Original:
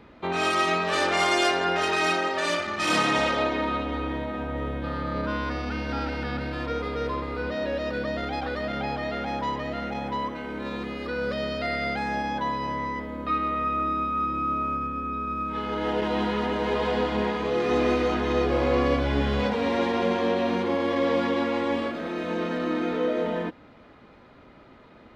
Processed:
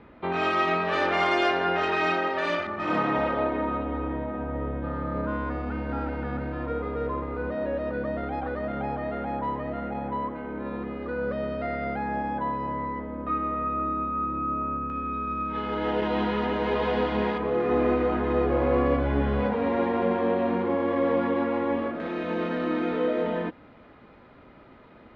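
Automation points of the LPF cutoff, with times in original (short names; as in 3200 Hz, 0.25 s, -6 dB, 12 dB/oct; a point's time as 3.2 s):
2600 Hz
from 2.67 s 1400 Hz
from 14.9 s 3400 Hz
from 17.38 s 1700 Hz
from 22 s 3300 Hz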